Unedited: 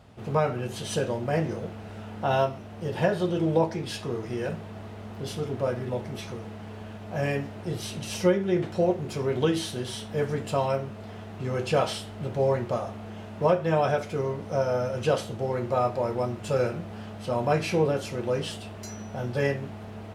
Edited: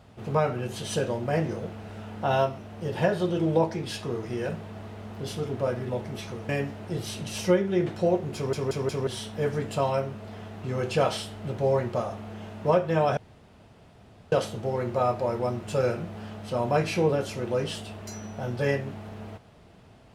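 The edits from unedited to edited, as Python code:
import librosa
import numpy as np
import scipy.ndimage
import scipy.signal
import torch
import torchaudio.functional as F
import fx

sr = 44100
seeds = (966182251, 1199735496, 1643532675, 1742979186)

y = fx.edit(x, sr, fx.cut(start_s=6.49, length_s=0.76),
    fx.stutter_over(start_s=9.11, slice_s=0.18, count=4),
    fx.room_tone_fill(start_s=13.93, length_s=1.15), tone=tone)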